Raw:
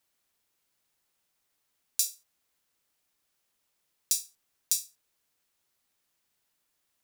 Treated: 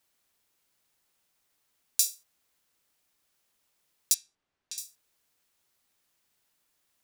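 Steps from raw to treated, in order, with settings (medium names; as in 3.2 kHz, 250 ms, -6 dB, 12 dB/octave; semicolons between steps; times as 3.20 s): 4.14–4.78 s: tape spacing loss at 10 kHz 23 dB; trim +2.5 dB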